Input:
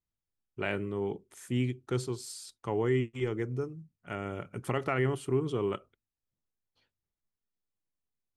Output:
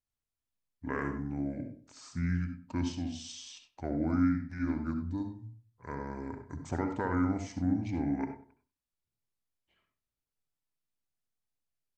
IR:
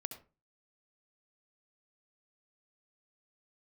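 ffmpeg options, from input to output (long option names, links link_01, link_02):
-filter_complex "[0:a]asetrate=30782,aresample=44100,asplit=2[link_01][link_02];[link_02]adelay=96,lowpass=frequency=1700:poles=1,volume=-14dB,asplit=2[link_03][link_04];[link_04]adelay=96,lowpass=frequency=1700:poles=1,volume=0.33,asplit=2[link_05][link_06];[link_06]adelay=96,lowpass=frequency=1700:poles=1,volume=0.33[link_07];[link_01][link_03][link_05][link_07]amix=inputs=4:normalize=0[link_08];[1:a]atrim=start_sample=2205,afade=type=out:start_time=0.18:duration=0.01,atrim=end_sample=8379[link_09];[link_08][link_09]afir=irnorm=-1:irlink=0"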